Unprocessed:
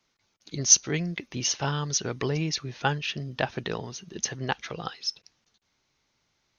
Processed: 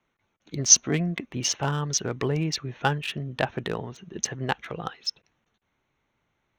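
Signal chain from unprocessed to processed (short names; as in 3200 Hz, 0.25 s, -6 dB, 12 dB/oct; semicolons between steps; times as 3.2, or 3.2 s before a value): Wiener smoothing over 9 samples; 0.69–1.25 small resonant body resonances 240/680/1100 Hz, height 8 dB; gain +2 dB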